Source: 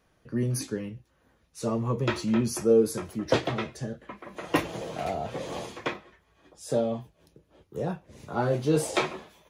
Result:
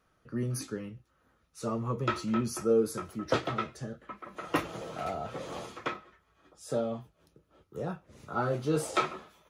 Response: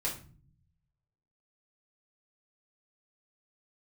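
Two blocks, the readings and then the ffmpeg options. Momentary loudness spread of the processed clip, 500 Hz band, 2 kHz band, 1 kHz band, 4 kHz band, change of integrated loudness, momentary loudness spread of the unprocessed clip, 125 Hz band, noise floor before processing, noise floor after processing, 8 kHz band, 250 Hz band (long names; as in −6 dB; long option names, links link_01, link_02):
14 LU, −5.0 dB, −3.5 dB, −1.0 dB, −5.0 dB, −4.5 dB, 16 LU, −5.0 dB, −68 dBFS, −71 dBFS, −5.0 dB, −5.0 dB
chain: -af "equalizer=frequency=1300:width_type=o:width=0.22:gain=12.5,volume=-5dB"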